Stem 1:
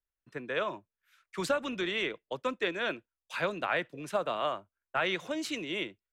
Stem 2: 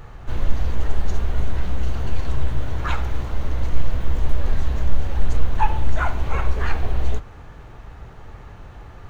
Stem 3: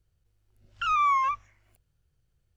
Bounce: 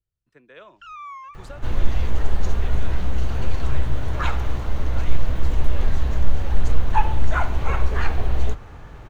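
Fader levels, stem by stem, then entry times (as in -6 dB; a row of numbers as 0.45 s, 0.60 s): -13.0 dB, +0.5 dB, -14.0 dB; 0.00 s, 1.35 s, 0.00 s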